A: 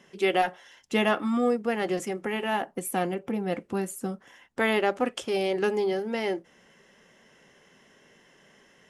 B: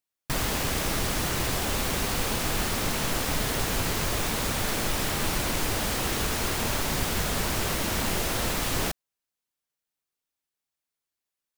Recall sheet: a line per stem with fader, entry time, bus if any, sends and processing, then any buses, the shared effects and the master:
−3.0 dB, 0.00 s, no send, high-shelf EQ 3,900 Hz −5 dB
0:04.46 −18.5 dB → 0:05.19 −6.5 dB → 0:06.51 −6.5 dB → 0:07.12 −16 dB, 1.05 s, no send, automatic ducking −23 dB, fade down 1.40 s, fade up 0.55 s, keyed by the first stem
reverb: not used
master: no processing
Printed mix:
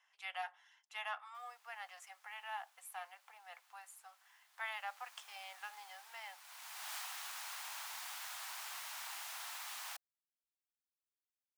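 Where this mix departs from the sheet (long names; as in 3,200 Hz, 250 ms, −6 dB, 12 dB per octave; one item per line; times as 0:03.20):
stem A −3.0 dB → −13.5 dB
master: extra Butterworth high-pass 770 Hz 48 dB per octave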